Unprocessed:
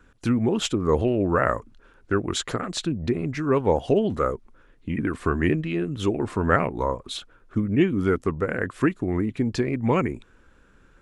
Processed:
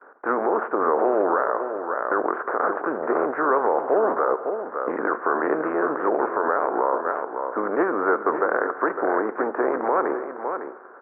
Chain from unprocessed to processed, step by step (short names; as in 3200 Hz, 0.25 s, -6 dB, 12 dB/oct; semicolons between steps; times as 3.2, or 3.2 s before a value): spectral contrast lowered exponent 0.51; in parallel at -2 dB: negative-ratio compressor -28 dBFS, ratio -0.5; on the sum: steep low-pass 1500 Hz 48 dB/oct; gate with hold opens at -42 dBFS; HPF 390 Hz 24 dB/oct; echo 0.555 s -9.5 dB; on a send at -13 dB: reverb RT60 1.7 s, pre-delay 3 ms; on the sum: limiter -15.5 dBFS, peak gain reduction 9 dB; gain +5 dB